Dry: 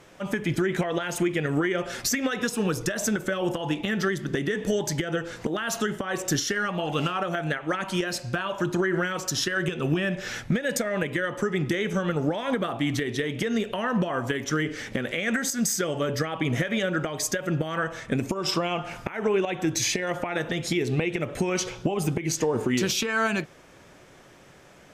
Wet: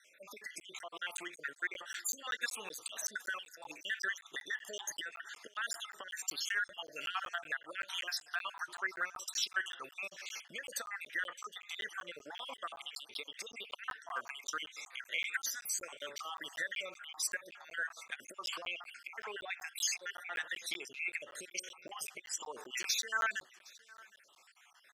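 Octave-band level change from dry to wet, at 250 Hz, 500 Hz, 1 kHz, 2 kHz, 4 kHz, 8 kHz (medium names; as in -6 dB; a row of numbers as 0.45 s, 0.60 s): -34.0 dB, -24.5 dB, -12.0 dB, -8.0 dB, -8.0 dB, -8.5 dB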